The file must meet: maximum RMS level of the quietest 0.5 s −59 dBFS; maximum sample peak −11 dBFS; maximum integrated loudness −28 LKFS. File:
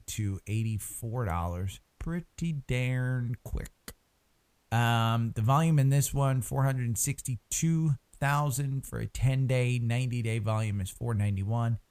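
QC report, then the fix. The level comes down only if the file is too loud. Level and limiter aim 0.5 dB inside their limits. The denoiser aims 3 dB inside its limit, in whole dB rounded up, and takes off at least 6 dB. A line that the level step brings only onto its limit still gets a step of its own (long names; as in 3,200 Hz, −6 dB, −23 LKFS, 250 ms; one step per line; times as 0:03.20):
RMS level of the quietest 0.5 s −70 dBFS: in spec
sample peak −12.5 dBFS: in spec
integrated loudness −30.0 LKFS: in spec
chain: no processing needed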